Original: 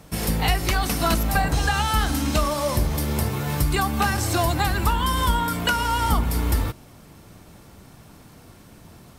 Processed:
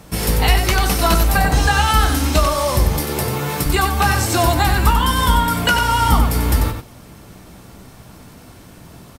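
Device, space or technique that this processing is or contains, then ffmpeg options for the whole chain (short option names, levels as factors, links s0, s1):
slapback doubling: -filter_complex "[0:a]asettb=1/sr,asplit=3[s0][s1][s2];[s0]atrim=end=2.914[s3];[s1]atrim=start=2.91:end=3.66,asetpts=PTS-STARTPTS,afade=t=in:d=0.004:c=qsin,afade=t=out:st=0.746:d=0.004:c=qsin,highpass=140[s4];[s2]atrim=start=3.656[s5];[s3][s4]acrossfade=d=0.004:c1=hsin:c2=qsin[s6];[s6][s5]acrossfade=d=0.004:c1=qsin:c2=hsin,asplit=3[s7][s8][s9];[s8]adelay=16,volume=0.355[s10];[s9]adelay=93,volume=0.473[s11];[s7][s10][s11]amix=inputs=3:normalize=0,volume=1.78"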